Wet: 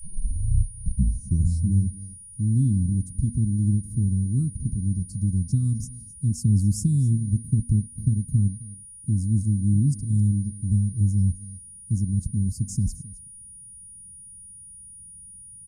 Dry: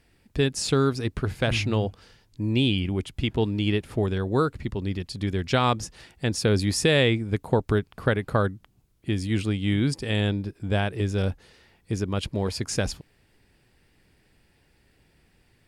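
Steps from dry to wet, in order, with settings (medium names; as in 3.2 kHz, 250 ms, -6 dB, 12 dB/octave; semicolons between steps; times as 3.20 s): tape start-up on the opening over 1.96 s; inverse Chebyshev band-stop 470–3200 Hz, stop band 50 dB; treble shelf 2.6 kHz -8.5 dB; delay 263 ms -19 dB; whistle 9.6 kHz -48 dBFS; de-hum 237 Hz, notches 3; trim +6 dB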